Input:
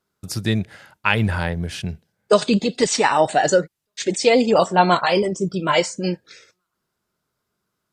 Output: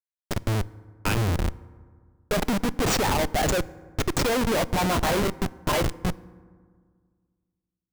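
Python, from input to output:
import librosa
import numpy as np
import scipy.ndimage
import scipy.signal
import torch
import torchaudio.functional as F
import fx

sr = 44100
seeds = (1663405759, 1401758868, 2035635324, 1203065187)

y = fx.high_shelf(x, sr, hz=3000.0, db=3.0)
y = fx.schmitt(y, sr, flips_db=-18.5)
y = fx.rev_fdn(y, sr, rt60_s=1.8, lf_ratio=1.25, hf_ratio=0.4, size_ms=19.0, drr_db=18.5)
y = y * librosa.db_to_amplitude(-2.0)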